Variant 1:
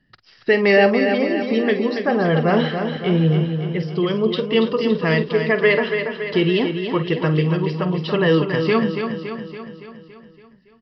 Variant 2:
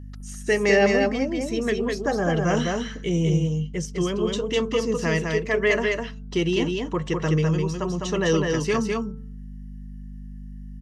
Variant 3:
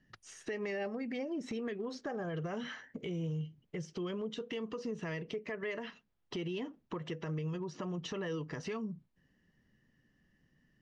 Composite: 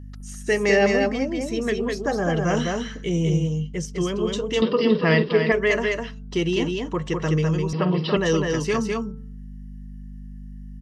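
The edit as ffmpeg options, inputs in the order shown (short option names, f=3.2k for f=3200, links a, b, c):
-filter_complex "[0:a]asplit=2[a][b];[1:a]asplit=3[c][d][e];[c]atrim=end=4.622[f];[a]atrim=start=4.618:end=5.522[g];[d]atrim=start=5.518:end=7.732[h];[b]atrim=start=7.728:end=8.172[i];[e]atrim=start=8.168[j];[f][g]acrossfade=d=0.004:c1=hsin:c2=hsin[k];[k][h]acrossfade=d=0.004:c1=hsin:c2=hsin[l];[l][i]acrossfade=d=0.004:c1=hsin:c2=hsin[m];[m][j]acrossfade=d=0.004:c1=hsin:c2=hsin"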